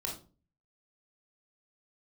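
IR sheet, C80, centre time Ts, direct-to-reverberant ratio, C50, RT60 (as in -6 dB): 13.0 dB, 27 ms, -1.5 dB, 6.0 dB, 0.35 s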